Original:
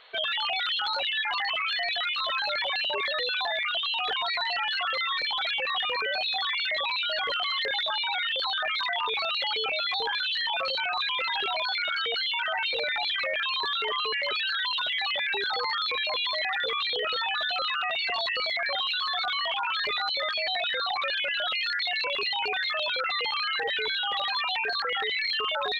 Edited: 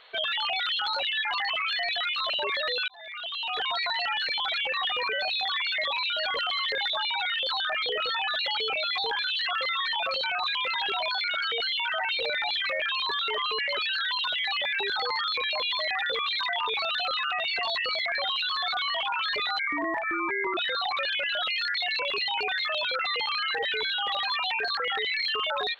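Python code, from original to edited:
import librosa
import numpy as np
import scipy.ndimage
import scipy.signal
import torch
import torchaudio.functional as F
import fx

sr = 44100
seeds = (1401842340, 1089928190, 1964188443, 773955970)

y = fx.edit(x, sr, fx.cut(start_s=2.3, length_s=0.51),
    fx.fade_in_span(start_s=3.39, length_s=0.8),
    fx.move(start_s=4.78, length_s=0.42, to_s=10.42),
    fx.swap(start_s=8.77, length_s=0.58, other_s=16.91, other_length_s=0.55),
    fx.speed_span(start_s=20.1, length_s=0.52, speed=0.53), tone=tone)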